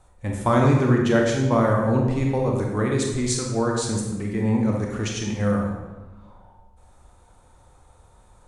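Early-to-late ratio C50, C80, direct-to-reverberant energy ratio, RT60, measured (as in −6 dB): 2.0 dB, 4.5 dB, −0.5 dB, 1.2 s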